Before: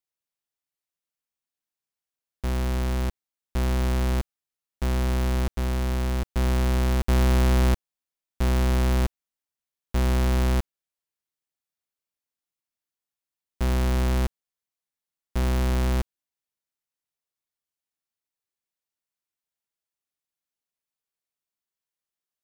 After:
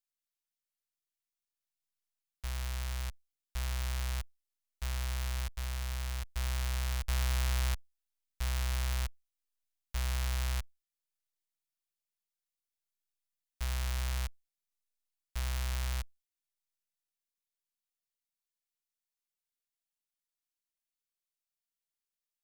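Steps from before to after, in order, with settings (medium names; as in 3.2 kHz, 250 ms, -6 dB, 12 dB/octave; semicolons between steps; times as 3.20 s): amplifier tone stack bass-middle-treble 10-0-10; trim -2.5 dB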